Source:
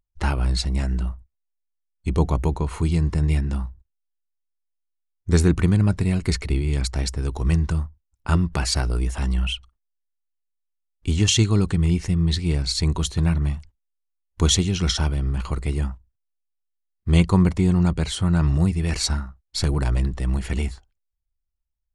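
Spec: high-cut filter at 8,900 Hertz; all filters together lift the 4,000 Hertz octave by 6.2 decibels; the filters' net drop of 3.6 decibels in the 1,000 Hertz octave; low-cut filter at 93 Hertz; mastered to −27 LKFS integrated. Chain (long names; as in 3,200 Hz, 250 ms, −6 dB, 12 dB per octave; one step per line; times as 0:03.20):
high-pass filter 93 Hz
low-pass filter 8,900 Hz
parametric band 1,000 Hz −5 dB
parametric band 4,000 Hz +8 dB
level −4.5 dB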